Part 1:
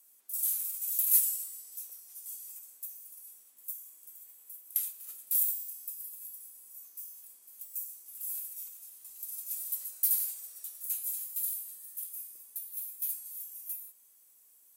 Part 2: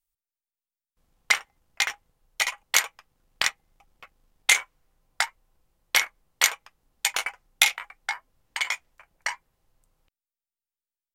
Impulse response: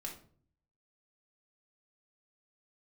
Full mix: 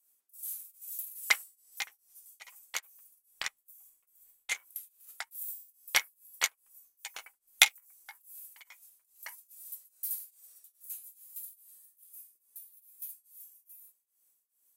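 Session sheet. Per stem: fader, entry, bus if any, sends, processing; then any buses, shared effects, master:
-7.0 dB, 0.00 s, no send, dry
+0.5 dB, 0.00 s, no send, upward expander 2.5:1, over -31 dBFS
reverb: off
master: tremolo triangle 2.4 Hz, depth 95%

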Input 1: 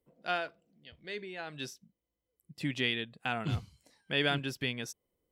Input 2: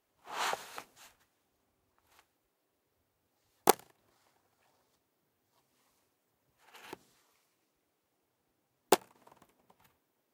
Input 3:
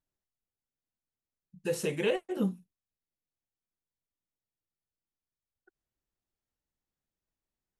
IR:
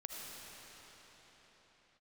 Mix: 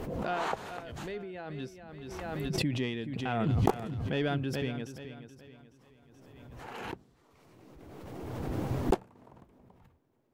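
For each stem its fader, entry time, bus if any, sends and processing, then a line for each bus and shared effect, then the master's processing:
-4.5 dB, 0.00 s, no send, echo send -11.5 dB, one diode to ground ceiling -18 dBFS; tilt shelf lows +8 dB, about 1300 Hz
+0.5 dB, 0.00 s, no send, no echo send, tilt -4 dB/oct; limiter -13.5 dBFS, peak gain reduction 9 dB
off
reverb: off
echo: feedback echo 0.427 s, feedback 37%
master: backwards sustainer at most 25 dB/s

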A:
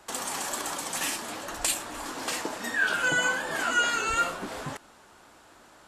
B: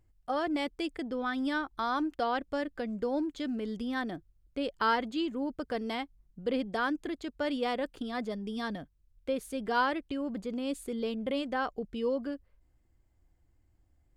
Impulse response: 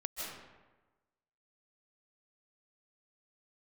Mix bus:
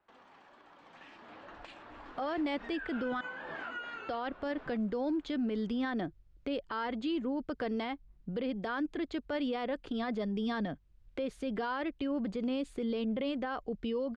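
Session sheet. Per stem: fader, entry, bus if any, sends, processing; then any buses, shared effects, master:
0.65 s -21.5 dB -> 1.42 s -11.5 dB -> 2.48 s -11.5 dB -> 3.06 s -5 dB -> 3.92 s -5 dB -> 4.26 s -12.5 dB, 0.00 s, no send, LPF 2900 Hz 12 dB/oct; compressor 12:1, threshold -33 dBFS, peak gain reduction 13 dB
+2.5 dB, 1.90 s, muted 3.21–4.08, no send, three-band squash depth 40%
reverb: off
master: LPF 4000 Hz 12 dB/oct; limiter -27 dBFS, peak gain reduction 11.5 dB

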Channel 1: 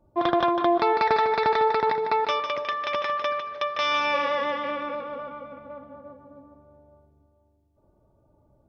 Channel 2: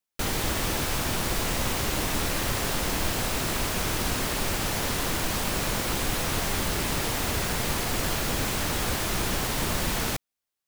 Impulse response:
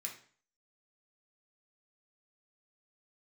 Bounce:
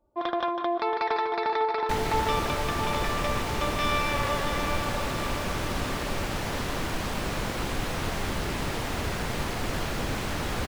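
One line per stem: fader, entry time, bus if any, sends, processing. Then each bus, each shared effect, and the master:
-5.5 dB, 0.00 s, send -14 dB, echo send -8 dB, bell 130 Hz -11.5 dB 1.4 oct
-1.0 dB, 1.70 s, no send, no echo send, LPF 2900 Hz 6 dB/oct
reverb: on, RT60 0.45 s, pre-delay 3 ms
echo: feedback echo 0.677 s, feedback 56%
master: dry

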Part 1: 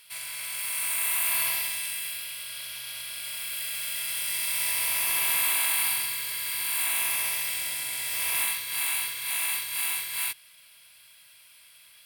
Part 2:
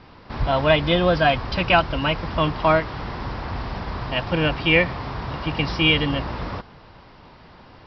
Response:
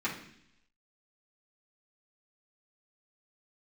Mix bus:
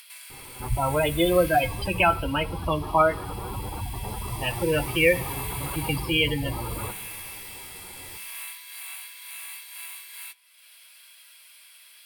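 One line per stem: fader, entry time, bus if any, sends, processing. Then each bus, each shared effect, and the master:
-7.0 dB, 0.00 s, send -22.5 dB, Bessel high-pass 580 Hz, order 8
+1.0 dB, 0.30 s, send -17.5 dB, spectral gate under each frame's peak -15 dB strong; comb 2.3 ms, depth 38%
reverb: on, RT60 0.70 s, pre-delay 3 ms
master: upward compressor, threshold -34 dBFS; flange 0.18 Hz, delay 6.9 ms, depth 4.6 ms, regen +51%

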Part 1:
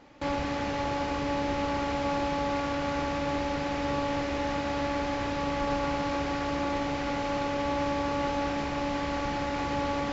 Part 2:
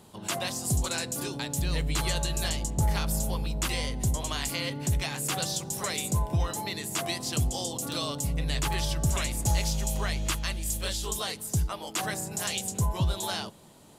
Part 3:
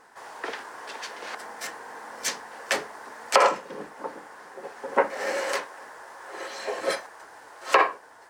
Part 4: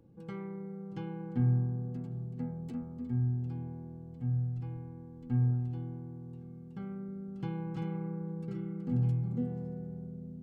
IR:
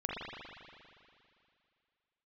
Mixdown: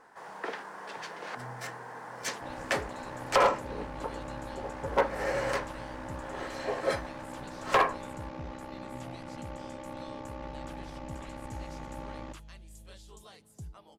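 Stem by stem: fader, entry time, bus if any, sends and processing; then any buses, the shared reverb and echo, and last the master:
-9.5 dB, 2.20 s, no send, ring modulator 32 Hz
-17.0 dB, 2.05 s, no send, LPF 12000 Hz 12 dB/oct
-1.5 dB, 0.00 s, no send, dry
-19.5 dB, 0.00 s, no send, dry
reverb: off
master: high shelf 2500 Hz -8 dB; hard clip -16.5 dBFS, distortion -13 dB

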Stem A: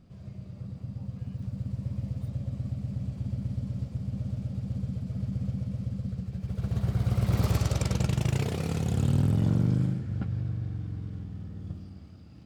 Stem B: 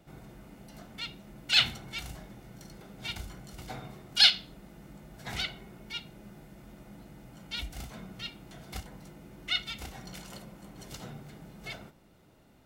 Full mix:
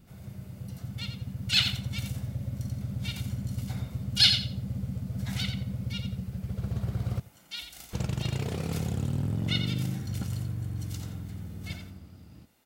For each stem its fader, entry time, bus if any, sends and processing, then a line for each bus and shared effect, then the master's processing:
-0.5 dB, 0.00 s, muted 7.2–7.93, no send, echo send -20.5 dB, compressor 4:1, threshold -26 dBFS, peak gain reduction 5.5 dB
-6.5 dB, 0.00 s, no send, echo send -8 dB, tilt +3 dB/oct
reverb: off
echo: feedback echo 87 ms, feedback 22%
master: dry

